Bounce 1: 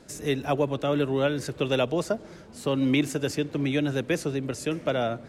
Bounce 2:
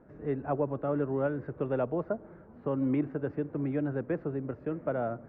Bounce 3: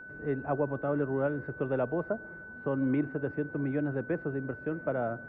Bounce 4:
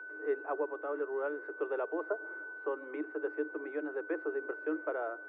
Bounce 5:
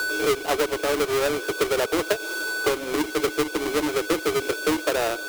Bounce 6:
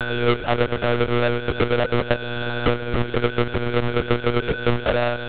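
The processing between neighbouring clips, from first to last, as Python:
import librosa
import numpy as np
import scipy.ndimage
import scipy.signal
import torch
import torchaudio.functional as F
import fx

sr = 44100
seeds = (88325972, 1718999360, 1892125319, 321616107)

y1 = scipy.signal.sosfilt(scipy.signal.butter(4, 1500.0, 'lowpass', fs=sr, output='sos'), x)
y1 = F.gain(torch.from_numpy(y1), -5.0).numpy()
y2 = y1 + 10.0 ** (-44.0 / 20.0) * np.sin(2.0 * np.pi * 1500.0 * np.arange(len(y1)) / sr)
y3 = fx.rider(y2, sr, range_db=5, speed_s=0.5)
y3 = scipy.signal.sosfilt(scipy.signal.cheby1(6, 6, 300.0, 'highpass', fs=sr, output='sos'), y3)
y4 = fx.halfwave_hold(y3, sr)
y4 = fx.band_squash(y4, sr, depth_pct=70)
y4 = F.gain(torch.from_numpy(y4), 8.0).numpy()
y5 = y4 + 10.0 ** (-21.0 / 20.0) * np.pad(y4, (int(850 * sr / 1000.0), 0))[:len(y4)]
y5 = fx.lpc_monotone(y5, sr, seeds[0], pitch_hz=120.0, order=10)
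y5 = F.gain(torch.from_numpy(y5), 3.5).numpy()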